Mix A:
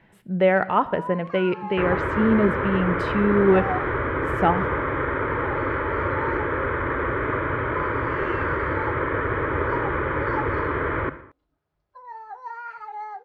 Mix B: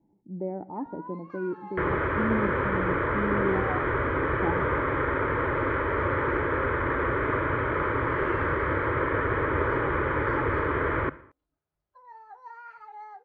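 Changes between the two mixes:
speech: add cascade formant filter u; first sound -9.0 dB; second sound: send -6.5 dB

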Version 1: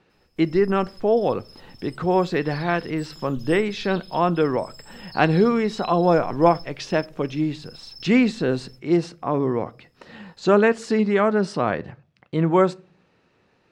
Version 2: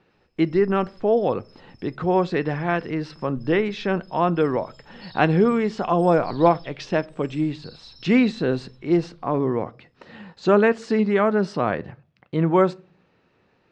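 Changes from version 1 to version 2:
first sound -5.0 dB; second sound: entry +2.50 s; master: add distance through air 86 m

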